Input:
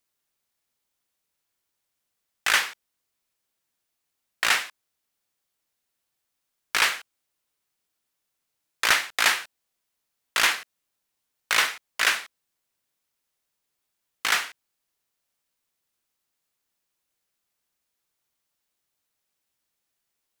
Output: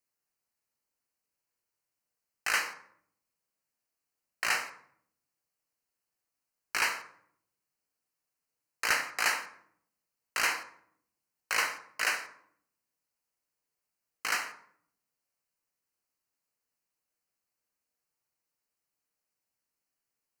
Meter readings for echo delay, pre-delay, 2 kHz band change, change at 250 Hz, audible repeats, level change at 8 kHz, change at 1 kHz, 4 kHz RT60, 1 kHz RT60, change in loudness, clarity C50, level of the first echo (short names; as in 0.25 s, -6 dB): none, 7 ms, -7.0 dB, -6.0 dB, none, -7.0 dB, -6.0 dB, 0.40 s, 0.60 s, -7.5 dB, 10.5 dB, none